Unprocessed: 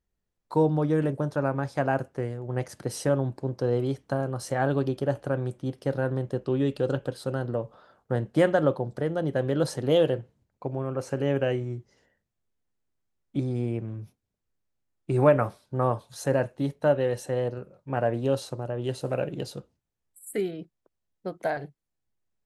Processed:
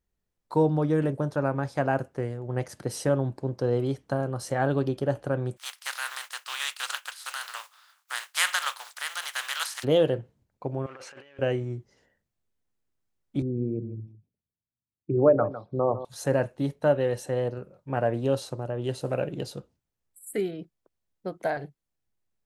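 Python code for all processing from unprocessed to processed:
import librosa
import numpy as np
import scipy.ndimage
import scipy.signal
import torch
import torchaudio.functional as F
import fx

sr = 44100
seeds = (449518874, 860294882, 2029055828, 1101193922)

y = fx.spec_flatten(x, sr, power=0.49, at=(5.56, 9.83), fade=0.02)
y = fx.highpass(y, sr, hz=1100.0, slope=24, at=(5.56, 9.83), fade=0.02)
y = fx.chain(y, sr, fx.over_compress(threshold_db=-32.0, ratio=-0.5),
    fx.leveller(passes=1),
    fx.bandpass_q(hz=2400.0, q=1.3), at=(10.86, 11.39))
y = fx.chain(y, sr, fx.envelope_sharpen(power=2.0),
    fx.bandpass_edges(low_hz=100.0, high_hz=3200.0),
    fx.echo_single(ms=154, db=-12.5), at=(13.42, 16.05))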